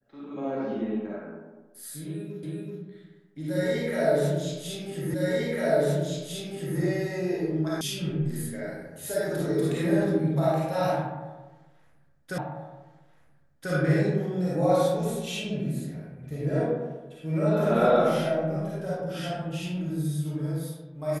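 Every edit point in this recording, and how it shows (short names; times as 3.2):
2.43 repeat of the last 0.38 s
5.14 repeat of the last 1.65 s
7.81 sound cut off
12.38 repeat of the last 1.34 s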